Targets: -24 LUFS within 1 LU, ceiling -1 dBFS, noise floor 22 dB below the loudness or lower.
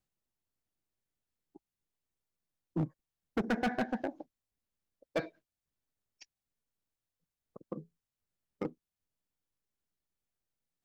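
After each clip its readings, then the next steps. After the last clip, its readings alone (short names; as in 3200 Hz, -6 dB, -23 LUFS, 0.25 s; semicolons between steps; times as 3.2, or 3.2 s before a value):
clipped 0.6%; flat tops at -26.0 dBFS; loudness -38.0 LUFS; peak -26.0 dBFS; loudness target -24.0 LUFS
-> clip repair -26 dBFS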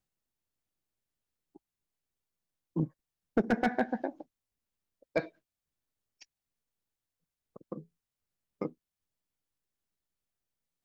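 clipped 0.0%; loudness -34.5 LUFS; peak -17.0 dBFS; loudness target -24.0 LUFS
-> gain +10.5 dB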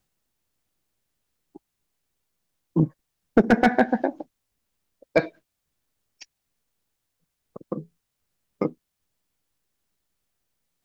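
loudness -24.5 LUFS; peak -6.5 dBFS; noise floor -80 dBFS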